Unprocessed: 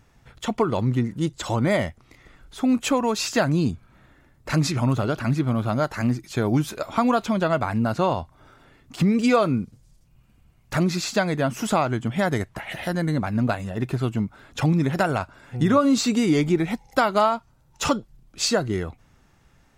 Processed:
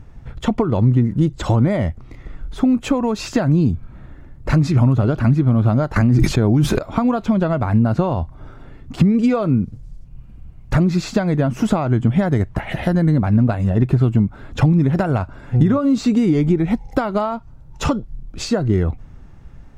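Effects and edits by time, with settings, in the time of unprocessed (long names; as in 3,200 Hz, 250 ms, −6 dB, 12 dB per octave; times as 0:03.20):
0:05.96–0:06.79: envelope flattener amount 100%
whole clip: downward compressor, threshold −25 dBFS; spectral tilt −3 dB per octave; level +6.5 dB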